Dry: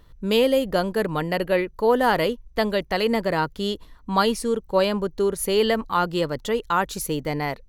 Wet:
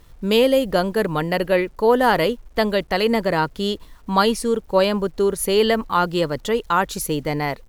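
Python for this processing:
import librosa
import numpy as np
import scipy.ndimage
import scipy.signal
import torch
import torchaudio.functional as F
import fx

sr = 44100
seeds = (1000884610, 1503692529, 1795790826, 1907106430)

y = fx.quant_dither(x, sr, seeds[0], bits=10, dither='none')
y = F.gain(torch.from_numpy(y), 3.0).numpy()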